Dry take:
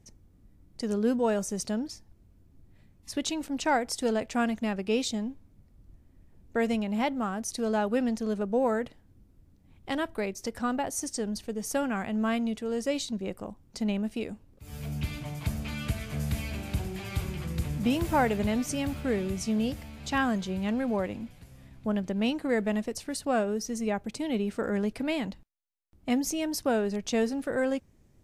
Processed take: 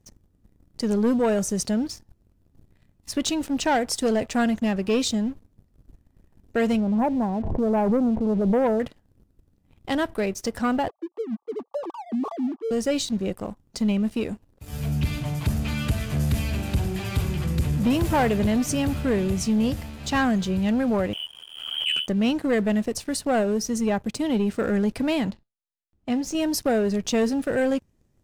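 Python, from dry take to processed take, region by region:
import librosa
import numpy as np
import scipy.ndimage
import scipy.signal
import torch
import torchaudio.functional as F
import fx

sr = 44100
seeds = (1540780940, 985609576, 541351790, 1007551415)

y = fx.chain(x, sr, fx.brickwall_lowpass(high_hz=1100.0),
    fx.pre_swell(db_per_s=43.0), at=(6.8, 8.8))
y = fx.chain(y, sr, fx.sine_speech(),
    fx.cheby_ripple(hz=1200.0, ripple_db=6),
    fx.tilt_eq(slope=2.5), at=(10.88, 12.71))
y = fx.chain(y, sr, fx.ring_mod(carrier_hz=38.0),
    fx.freq_invert(carrier_hz=3200),
    fx.pre_swell(db_per_s=53.0), at=(21.13, 22.08))
y = fx.chain(y, sr, fx.air_absorb(metres=57.0),
    fx.comb_fb(f0_hz=110.0, decay_s=0.26, harmonics='all', damping=0.0, mix_pct=50), at=(25.3, 26.35))
y = fx.notch(y, sr, hz=2200.0, q=17.0)
y = fx.dynamic_eq(y, sr, hz=100.0, q=0.76, threshold_db=-42.0, ratio=4.0, max_db=4)
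y = fx.leveller(y, sr, passes=2)
y = y * librosa.db_to_amplitude(-1.0)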